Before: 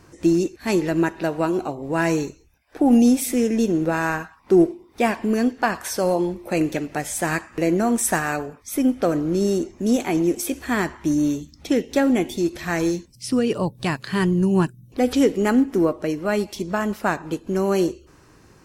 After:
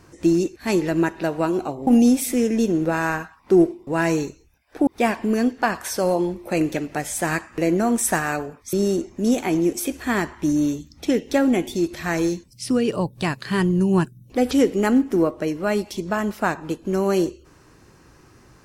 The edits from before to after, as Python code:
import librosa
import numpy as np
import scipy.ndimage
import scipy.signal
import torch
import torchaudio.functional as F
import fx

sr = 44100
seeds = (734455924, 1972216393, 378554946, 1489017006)

y = fx.edit(x, sr, fx.move(start_s=1.87, length_s=1.0, to_s=4.87),
    fx.cut(start_s=8.73, length_s=0.62), tone=tone)